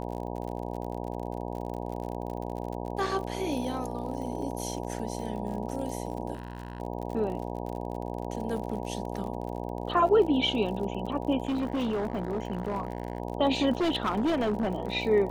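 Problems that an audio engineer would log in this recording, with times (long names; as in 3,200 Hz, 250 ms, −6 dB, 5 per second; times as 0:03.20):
mains buzz 60 Hz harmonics 16 −35 dBFS
surface crackle 46 per second −36 dBFS
0:06.33–0:06.80: clipping −33 dBFS
0:11.45–0:13.20: clipping −25.5 dBFS
0:13.71–0:14.93: clipping −23 dBFS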